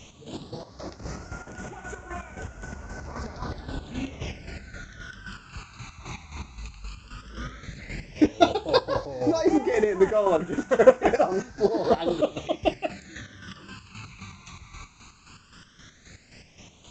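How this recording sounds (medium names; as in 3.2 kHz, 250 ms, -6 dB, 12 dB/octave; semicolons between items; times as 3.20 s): a quantiser's noise floor 8-bit, dither triangular; chopped level 3.8 Hz, depth 60%, duty 40%; phasing stages 12, 0.12 Hz, lowest notch 540–4200 Hz; A-law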